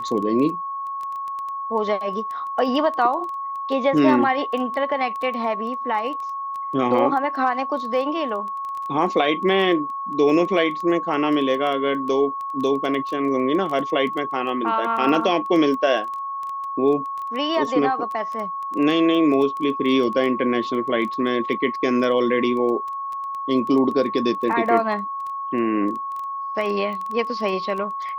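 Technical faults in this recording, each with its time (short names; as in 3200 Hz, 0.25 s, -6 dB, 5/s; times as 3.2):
crackle 11/s -27 dBFS
tone 1100 Hz -26 dBFS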